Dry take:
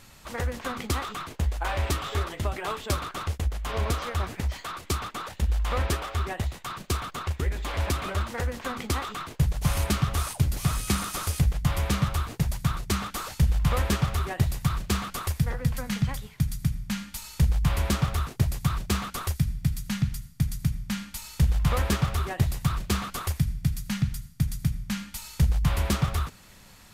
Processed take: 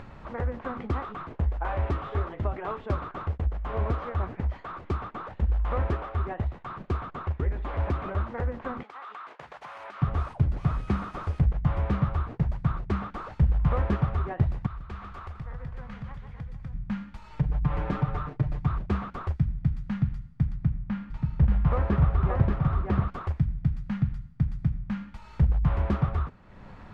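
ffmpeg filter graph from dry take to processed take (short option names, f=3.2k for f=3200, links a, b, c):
-filter_complex "[0:a]asettb=1/sr,asplit=3[a][b][c];[a]atrim=end=8.834[d];[b]atrim=start=8.83:end=10.02,asetpts=PTS-STARTPTS,afade=t=in:d=0.004:c=qsin,afade=t=out:st=1.186:d=0.004:c=qsin,highpass=920,acompressor=threshold=-37dB:ratio=10:attack=3.2:release=140:knee=1:detection=peak[e];[c]atrim=start=10.016[f];[d][e]acrossfade=d=0.004:c1=hsin:c2=qsin[g];[g][f]acrossfade=d=0.004:c1=qsin:c2=hsin,asettb=1/sr,asplit=3[h][i][j];[h]atrim=end=14.664[k];[i]atrim=start=14.66:end=16.73,asetpts=PTS-STARTPTS,afade=t=in:d=0.004:c=qsin,afade=t=out:st=2.066:d=0.004:c=qsin,equalizer=f=230:w=0.43:g=-10,acompressor=threshold=-44dB:ratio=1.5:attack=3.2:release=140:knee=1:detection=peak,aecho=1:1:145|273|454|874:0.376|0.237|0.133|0.266,atrim=end_sample=91287[l];[j]atrim=start=16.726[m];[k][l]acrossfade=d=0.004:c1=hsin:c2=qsin[n];[n][m]acrossfade=d=0.004:c1=qsin:c2=hsin,asettb=1/sr,asplit=3[o][p][q];[o]atrim=end=17.294[r];[p]atrim=start=17.29:end=18.67,asetpts=PTS-STARTPTS,afade=t=in:d=0.004:c=qsin,afade=t=out:st=1.376:d=0.004:c=qsin,highshelf=f=10k:g=-9.5,aecho=1:1:6.7:0.84,atrim=end_sample=60858,acompressor=threshold=-22dB:ratio=2:attack=3.2:release=140:knee=1:detection=peak[s];[q]atrim=start=18.666[t];[r][s]acrossfade=d=0.004:c1=hsin:c2=qsin[u];[u][t]acrossfade=d=0.004:c1=qsin:c2=hsin,asettb=1/sr,asplit=3[v][w][x];[v]atrim=end=20.524[y];[w]atrim=start=20.52:end=23.08,asetpts=PTS-STARTPTS,afade=t=in:d=0.004:c=qsin,afade=t=out:st=2.556:d=0.004:c=qsin,aemphasis=mode=reproduction:type=50fm,aecho=1:1:581:0.708,atrim=end_sample=112896[z];[x]atrim=start=23.076[aa];[y][z]acrossfade=d=0.004:c1=hsin:c2=qsin[ab];[ab][aa]acrossfade=d=0.004:c1=qsin:c2=hsin,lowpass=1.3k,acompressor=mode=upward:threshold=-35dB:ratio=2.5"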